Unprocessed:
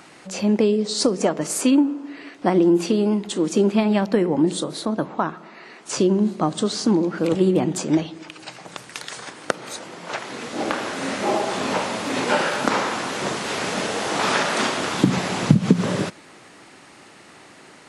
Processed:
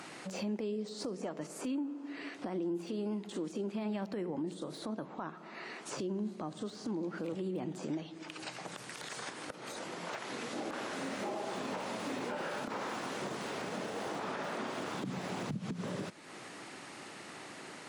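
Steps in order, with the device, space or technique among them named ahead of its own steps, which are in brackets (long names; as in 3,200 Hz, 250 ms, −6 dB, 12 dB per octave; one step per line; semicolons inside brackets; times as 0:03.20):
podcast mastering chain (high-pass filter 100 Hz; de-essing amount 85%; downward compressor 2.5 to 1, threshold −39 dBFS, peak gain reduction 19 dB; brickwall limiter −27.5 dBFS, peak gain reduction 7.5 dB; level −1 dB; MP3 112 kbit/s 48,000 Hz)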